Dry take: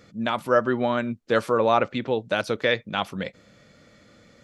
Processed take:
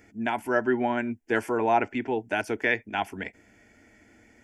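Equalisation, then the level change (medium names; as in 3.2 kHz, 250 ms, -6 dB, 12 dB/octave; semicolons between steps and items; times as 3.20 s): static phaser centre 800 Hz, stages 8; +1.5 dB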